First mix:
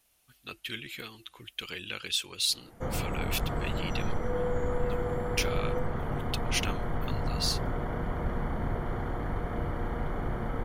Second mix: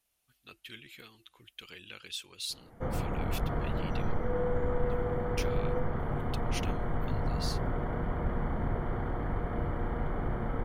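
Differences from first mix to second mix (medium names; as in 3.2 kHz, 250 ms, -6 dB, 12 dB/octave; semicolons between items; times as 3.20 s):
speech -9.5 dB; background: add distance through air 230 m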